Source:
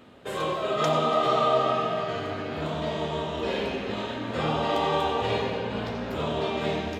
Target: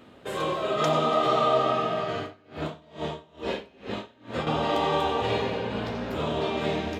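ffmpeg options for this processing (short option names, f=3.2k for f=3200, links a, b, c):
-filter_complex "[0:a]equalizer=f=320:w=5.8:g=2.5,asettb=1/sr,asplit=3[a][b][c];[a]atrim=end=2.204[d];[b]atrim=start=2.2:end=4.47,asetpts=PTS-STARTPTS,afade=t=in:d=0.004:c=qsin,afade=t=out:st=2.266:d=0.004:c=qsin,aeval=exprs='val(0)*pow(10,-27*(0.5-0.5*cos(2*PI*2.3*n/s))/20)':c=same[e];[c]atrim=start=4.466[f];[d][e]acrossfade=d=0.004:c1=hsin:c2=qsin[g];[g][f]acrossfade=d=0.004:c1=qsin:c2=hsin"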